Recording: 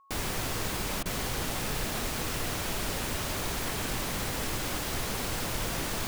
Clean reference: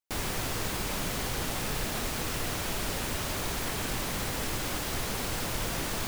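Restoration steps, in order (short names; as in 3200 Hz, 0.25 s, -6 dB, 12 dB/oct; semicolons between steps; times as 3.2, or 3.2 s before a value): notch 1100 Hz, Q 30; interpolate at 1.03, 25 ms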